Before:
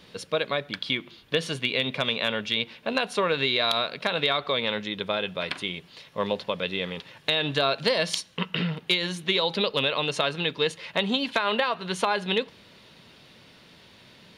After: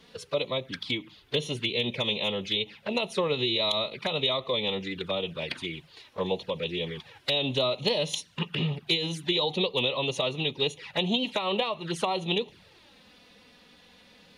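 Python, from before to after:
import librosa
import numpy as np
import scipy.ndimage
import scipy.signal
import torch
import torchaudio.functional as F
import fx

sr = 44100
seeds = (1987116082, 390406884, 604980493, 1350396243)

y = fx.env_flanger(x, sr, rest_ms=4.4, full_db=-25.0)
y = fx.pitch_keep_formants(y, sr, semitones=-1.5)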